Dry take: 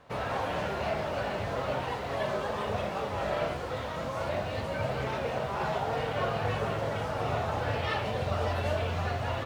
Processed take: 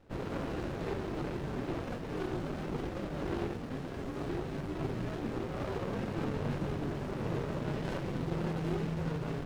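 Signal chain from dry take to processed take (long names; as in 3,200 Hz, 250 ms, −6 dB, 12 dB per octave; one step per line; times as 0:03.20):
frequency shifter −250 Hz
windowed peak hold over 33 samples
level −3 dB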